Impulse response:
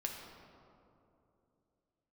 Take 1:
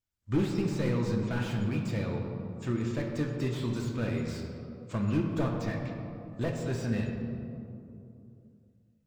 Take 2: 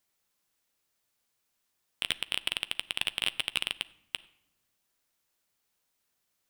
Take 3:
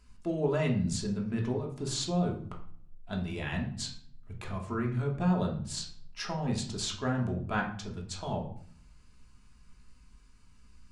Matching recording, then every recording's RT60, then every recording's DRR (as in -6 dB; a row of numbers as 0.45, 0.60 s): 1; 2.8 s, not exponential, 0.55 s; 0.0, 15.5, -0.5 dB